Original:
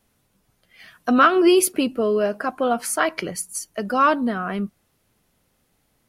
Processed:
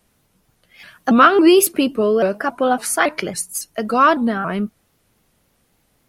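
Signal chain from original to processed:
pitch modulation by a square or saw wave saw up 3.6 Hz, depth 160 cents
level +4 dB

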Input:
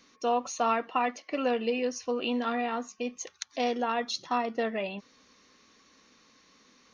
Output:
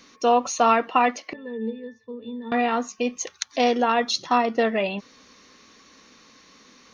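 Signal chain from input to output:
0:01.33–0:02.52: resonances in every octave A, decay 0.21 s
level +8.5 dB

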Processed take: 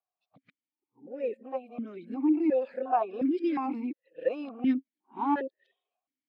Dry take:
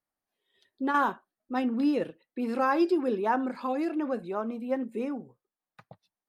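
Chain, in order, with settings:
played backwards from end to start
formant filter that steps through the vowels 2.8 Hz
level +8 dB

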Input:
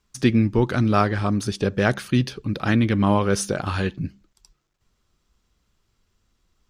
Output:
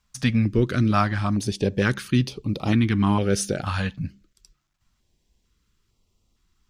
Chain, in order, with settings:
notch on a step sequencer 2.2 Hz 360–1,600 Hz

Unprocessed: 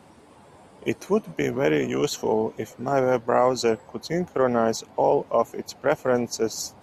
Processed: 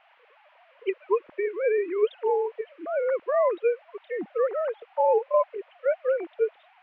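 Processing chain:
three sine waves on the formant tracks
noise in a band 860–2,800 Hz −60 dBFS
level −2.5 dB

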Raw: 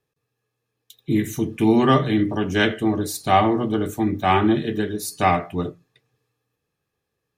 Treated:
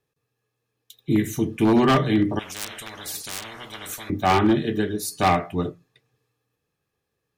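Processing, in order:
wave folding −10.5 dBFS
0:02.39–0:04.10: every bin compressed towards the loudest bin 10 to 1

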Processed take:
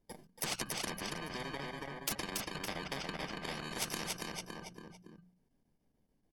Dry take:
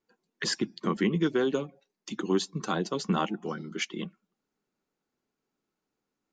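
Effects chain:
samples in bit-reversed order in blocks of 32 samples
noise gate with hold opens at −59 dBFS
spectral tilt −3 dB per octave
mains-hum notches 60/120/180 Hz
comb filter 1.4 ms, depth 47%
brickwall limiter −17.5 dBFS, peak gain reduction 6.5 dB
treble cut that deepens with the level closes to 1,800 Hz, closed at −24.5 dBFS
downward compressor 12 to 1, threshold −36 dBFS, peak gain reduction 14.5 dB
square-wave tremolo 6.9 Hz, depth 65%, duty 85%
repeating echo 281 ms, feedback 31%, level −7 dB
every bin compressed towards the loudest bin 4 to 1
level +6.5 dB

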